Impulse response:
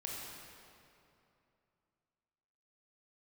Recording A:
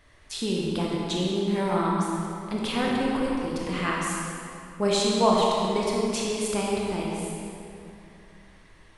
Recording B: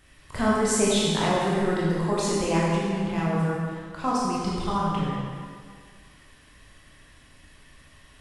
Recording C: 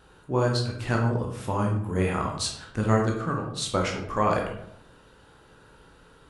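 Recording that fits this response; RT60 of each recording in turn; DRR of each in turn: A; 2.8, 2.0, 0.75 s; -3.5, -6.5, -0.5 dB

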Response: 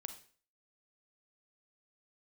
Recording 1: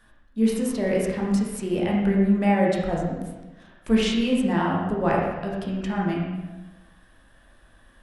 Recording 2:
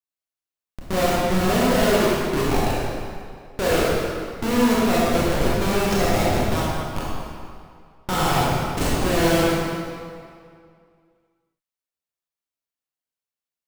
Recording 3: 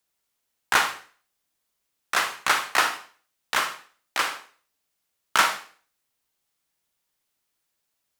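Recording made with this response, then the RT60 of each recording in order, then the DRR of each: 3; 1.1, 2.3, 0.45 s; -4.5, -7.0, 7.5 dB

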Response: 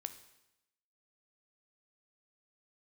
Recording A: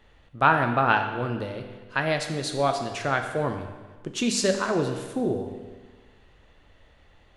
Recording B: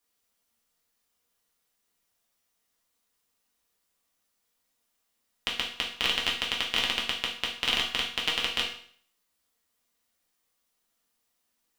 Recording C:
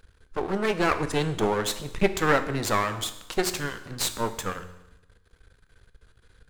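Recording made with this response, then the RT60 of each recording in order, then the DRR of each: C; 1.4, 0.55, 0.90 s; 4.5, -3.5, 9.0 dB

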